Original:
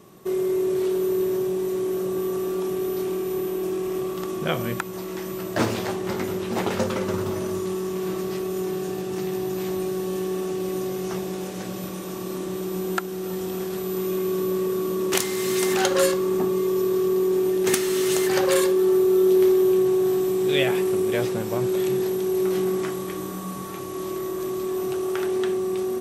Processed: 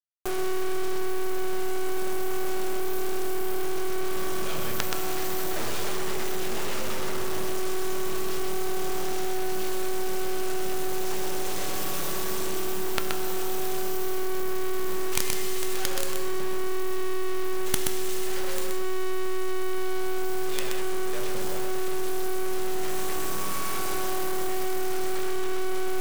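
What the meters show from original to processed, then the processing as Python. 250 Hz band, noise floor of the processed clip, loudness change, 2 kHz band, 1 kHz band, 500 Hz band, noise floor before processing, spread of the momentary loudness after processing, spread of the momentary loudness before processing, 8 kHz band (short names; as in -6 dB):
-9.0 dB, -24 dBFS, -6.0 dB, -1.5 dB, 0.0 dB, -8.5 dB, -32 dBFS, 2 LU, 11 LU, -0.5 dB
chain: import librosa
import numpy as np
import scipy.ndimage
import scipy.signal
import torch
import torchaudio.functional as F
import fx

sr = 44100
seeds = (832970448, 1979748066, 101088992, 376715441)

p1 = scipy.signal.sosfilt(scipy.signal.butter(4, 71.0, 'highpass', fs=sr, output='sos'), x)
p2 = fx.low_shelf(p1, sr, hz=380.0, db=-10.0)
p3 = np.maximum(p2, 0.0)
p4 = fx.quant_companded(p3, sr, bits=2)
p5 = fx.comb_fb(p4, sr, f0_hz=150.0, decay_s=1.6, harmonics='all', damping=0.0, mix_pct=70)
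p6 = p5 + fx.echo_single(p5, sr, ms=126, db=-4.5, dry=0)
p7 = fx.env_flatten(p6, sr, amount_pct=50)
y = p7 * 10.0 ** (4.5 / 20.0)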